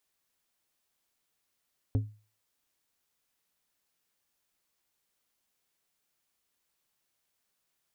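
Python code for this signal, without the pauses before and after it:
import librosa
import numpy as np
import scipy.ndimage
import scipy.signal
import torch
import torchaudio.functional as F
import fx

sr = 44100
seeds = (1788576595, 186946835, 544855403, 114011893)

y = fx.strike_glass(sr, length_s=0.89, level_db=-21.0, body='plate', hz=106.0, decay_s=0.36, tilt_db=7.5, modes=5)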